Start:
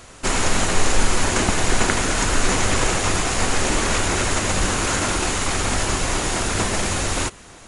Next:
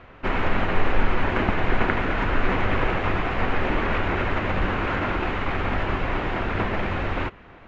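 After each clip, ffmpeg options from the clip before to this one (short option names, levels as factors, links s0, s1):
-af "lowpass=f=2600:w=0.5412,lowpass=f=2600:w=1.3066,volume=0.794"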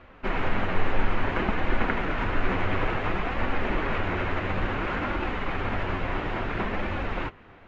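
-af "flanger=delay=3.4:depth=8:regen=-38:speed=0.58:shape=sinusoidal"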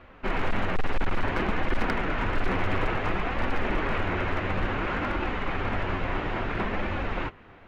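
-af "asoftclip=type=hard:threshold=0.119"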